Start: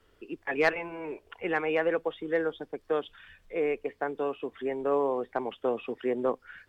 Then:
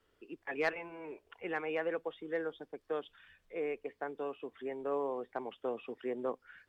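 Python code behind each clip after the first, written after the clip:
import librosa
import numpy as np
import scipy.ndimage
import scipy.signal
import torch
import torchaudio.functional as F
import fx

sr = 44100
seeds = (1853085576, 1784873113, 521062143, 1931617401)

y = fx.low_shelf(x, sr, hz=85.0, db=-6.5)
y = y * librosa.db_to_amplitude(-8.0)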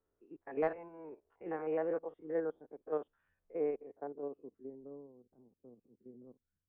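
y = fx.spec_steps(x, sr, hold_ms=50)
y = fx.filter_sweep_lowpass(y, sr, from_hz=950.0, to_hz=170.0, start_s=3.7, end_s=5.11, q=0.82)
y = fx.upward_expand(y, sr, threshold_db=-57.0, expansion=1.5)
y = y * librosa.db_to_amplitude(4.0)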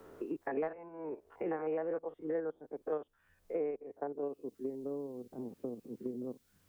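y = fx.band_squash(x, sr, depth_pct=100)
y = y * librosa.db_to_amplitude(1.5)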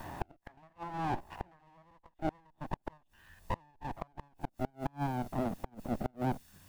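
y = fx.lower_of_two(x, sr, delay_ms=1.1)
y = fx.gate_flip(y, sr, shuts_db=-34.0, range_db=-35)
y = y * librosa.db_to_amplitude(13.0)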